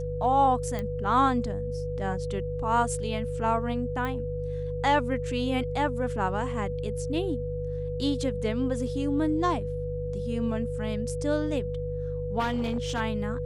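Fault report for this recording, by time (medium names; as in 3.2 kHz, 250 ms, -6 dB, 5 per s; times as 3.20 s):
hum 50 Hz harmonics 3 -34 dBFS
whine 490 Hz -32 dBFS
0.79 s: pop -19 dBFS
4.05 s: pop -20 dBFS
12.39–13.01 s: clipped -23.5 dBFS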